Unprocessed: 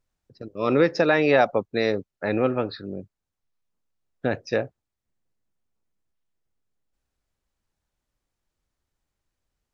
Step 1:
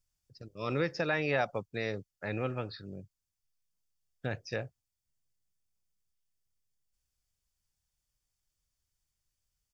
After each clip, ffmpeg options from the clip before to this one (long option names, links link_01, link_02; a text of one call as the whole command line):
ffmpeg -i in.wav -filter_complex "[0:a]bandreject=frequency=4000:width=8.7,acrossover=split=2900[link_01][link_02];[link_02]acompressor=threshold=-47dB:ratio=4:attack=1:release=60[link_03];[link_01][link_03]amix=inputs=2:normalize=0,firequalizer=gain_entry='entry(130,0);entry(240,-10);entry(4500,7)':delay=0.05:min_phase=1,volume=-4dB" out.wav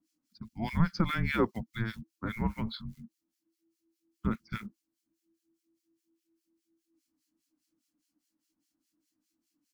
ffmpeg -i in.wav -filter_complex "[0:a]acrusher=bits=8:mode=log:mix=0:aa=0.000001,afreqshift=-330,acrossover=split=1500[link_01][link_02];[link_01]aeval=exprs='val(0)*(1-1/2+1/2*cos(2*PI*4.9*n/s))':channel_layout=same[link_03];[link_02]aeval=exprs='val(0)*(1-1/2-1/2*cos(2*PI*4.9*n/s))':channel_layout=same[link_04];[link_03][link_04]amix=inputs=2:normalize=0,volume=6dB" out.wav